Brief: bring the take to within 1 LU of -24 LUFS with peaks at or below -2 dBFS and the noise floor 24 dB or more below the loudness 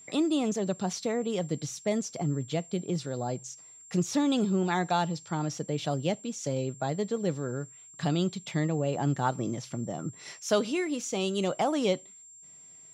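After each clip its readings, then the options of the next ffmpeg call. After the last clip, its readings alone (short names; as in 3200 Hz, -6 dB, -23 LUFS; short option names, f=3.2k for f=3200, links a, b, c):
steady tone 7400 Hz; tone level -49 dBFS; loudness -30.5 LUFS; peak -13.0 dBFS; loudness target -24.0 LUFS
-> -af "bandreject=f=7.4k:w=30"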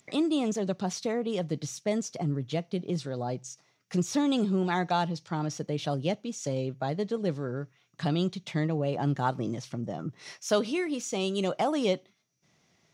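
steady tone none; loudness -30.5 LUFS; peak -13.0 dBFS; loudness target -24.0 LUFS
-> -af "volume=6.5dB"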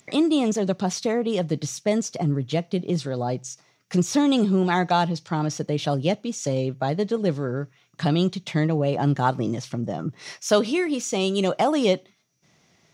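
loudness -24.0 LUFS; peak -6.5 dBFS; noise floor -62 dBFS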